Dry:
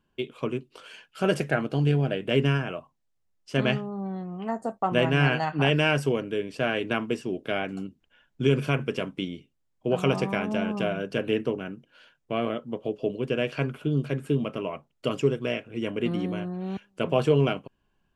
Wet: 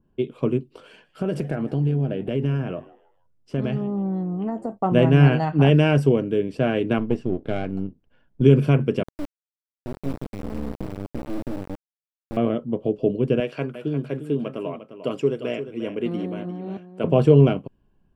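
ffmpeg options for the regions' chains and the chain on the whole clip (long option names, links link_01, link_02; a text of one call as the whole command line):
ffmpeg -i in.wav -filter_complex "[0:a]asettb=1/sr,asplit=3[link_01][link_02][link_03];[link_01]atrim=end=0.894[link_04];[link_02]atrim=start=0.89:end=4.73,asetpts=PTS-STARTPTS,afade=type=in:duration=0.004:curve=qsin,afade=type=out:start_time=3.836:duration=0.004:curve=qsin,acompressor=threshold=-29dB:ratio=3:attack=3.2:release=140:knee=1:detection=peak,asplit=4[link_05][link_06][link_07][link_08];[link_06]adelay=156,afreqshift=120,volume=-20dB[link_09];[link_07]adelay=312,afreqshift=240,volume=-29.4dB[link_10];[link_08]adelay=468,afreqshift=360,volume=-38.7dB[link_11];[link_05][link_09][link_10][link_11]amix=inputs=4:normalize=0,atrim=end_sample=169344[link_12];[link_03]atrim=start=4.726[link_13];[link_04][link_12]acrossfade=duration=0.004:curve1=hsin:curve2=qsin[link_14];[link_14][link_13]acrossfade=duration=0.004:curve1=qsin:curve2=hsin,asettb=1/sr,asplit=3[link_15][link_16][link_17];[link_15]atrim=end=6.984[link_18];[link_16]atrim=start=6.98:end=8.42,asetpts=PTS-STARTPTS,afade=type=in:duration=0.004:curve=qsin,afade=type=out:start_time=1.436:duration=0.004:curve=qsin,aeval=exprs='if(lt(val(0),0),0.447*val(0),val(0))':channel_layout=same,adynamicsmooth=sensitivity=5.5:basefreq=6300[link_19];[link_17]atrim=start=8.416[link_20];[link_18][link_19]acrossfade=duration=0.004:curve1=hsin:curve2=qsin[link_21];[link_21][link_20]acrossfade=duration=0.004:curve1=qsin:curve2=hsin,asettb=1/sr,asplit=3[link_22][link_23][link_24];[link_22]atrim=end=9.034[link_25];[link_23]atrim=start=9.03:end=12.37,asetpts=PTS-STARTPTS,afade=type=in:duration=0.004:curve=qsin,afade=type=out:start_time=3.336:duration=0.004:curve=qsin,asplit=3[link_26][link_27][link_28];[link_26]bandpass=frequency=300:width_type=q:width=8,volume=0dB[link_29];[link_27]bandpass=frequency=870:width_type=q:width=8,volume=-6dB[link_30];[link_28]bandpass=frequency=2240:width_type=q:width=8,volume=-9dB[link_31];[link_29][link_30][link_31]amix=inputs=3:normalize=0,asubboost=boost=8:cutoff=220,acrusher=bits=3:dc=4:mix=0:aa=0.000001[link_32];[link_24]atrim=start=12.366[link_33];[link_25][link_32]acrossfade=duration=0.004:curve1=hsin:curve2=qsin[link_34];[link_34][link_33]acrossfade=duration=0.004:curve1=qsin:curve2=hsin,asettb=1/sr,asplit=3[link_35][link_36][link_37];[link_35]atrim=end=13.404[link_38];[link_36]atrim=start=13.4:end=17.04,asetpts=PTS-STARTPTS,afade=type=in:duration=0.004:curve=qsin,afade=type=out:start_time=3.636:duration=0.004:curve=qsin,highpass=frequency=540:poles=1,aecho=1:1:351:0.282,atrim=end_sample=160524[link_39];[link_37]atrim=start=17.036[link_40];[link_38][link_39]acrossfade=duration=0.004:curve1=hsin:curve2=qsin[link_41];[link_41][link_40]acrossfade=duration=0.004:curve1=qsin:curve2=hsin,tiltshelf=frequency=970:gain=10,bandreject=frequency=6500:width=11,adynamicequalizer=threshold=0.0112:dfrequency=2000:dqfactor=0.7:tfrequency=2000:tqfactor=0.7:attack=5:release=100:ratio=0.375:range=3:mode=boostabove:tftype=highshelf" out.wav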